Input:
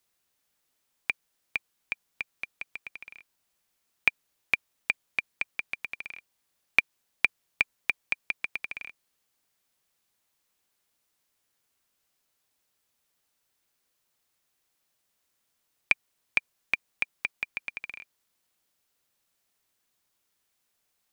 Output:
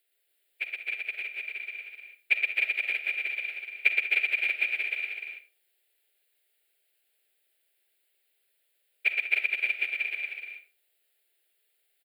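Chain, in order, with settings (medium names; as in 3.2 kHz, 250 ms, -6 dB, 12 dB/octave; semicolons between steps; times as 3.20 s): brick-wall FIR high-pass 340 Hz; static phaser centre 2.6 kHz, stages 4; on a send at -10 dB: reverberation RT60 0.55 s, pre-delay 45 ms; on the sum: plain phase-vocoder stretch 0.57×; multi-tap echo 119/191/257/306 ms -3/-15/-13/-3.5 dB; trim +5.5 dB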